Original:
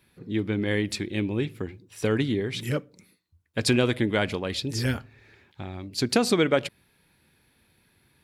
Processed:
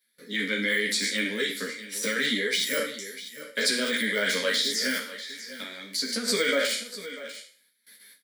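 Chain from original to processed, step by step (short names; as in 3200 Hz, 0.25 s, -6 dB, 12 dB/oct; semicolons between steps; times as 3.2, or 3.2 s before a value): spectral trails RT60 0.44 s; de-esser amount 100%; resonant high shelf 1600 Hz +12.5 dB, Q 3; 4.97–6.28 compressor 12:1, threshold -26 dBFS, peak gain reduction 12 dB; fixed phaser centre 520 Hz, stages 8; limiter -18.5 dBFS, peak gain reduction 6.5 dB; Bessel high-pass 350 Hz, order 6; gate with hold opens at -45 dBFS; on a send: echo 0.645 s -14 dB; on the sum: ensemble effect; gain +8 dB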